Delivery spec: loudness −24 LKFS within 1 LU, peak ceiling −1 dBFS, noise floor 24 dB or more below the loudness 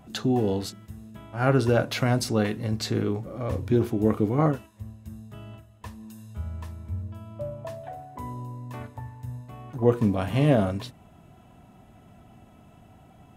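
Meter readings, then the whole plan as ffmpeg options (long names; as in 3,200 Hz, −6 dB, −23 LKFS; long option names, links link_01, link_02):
integrated loudness −26.5 LKFS; sample peak −6.0 dBFS; target loudness −24.0 LKFS
→ -af "volume=2.5dB"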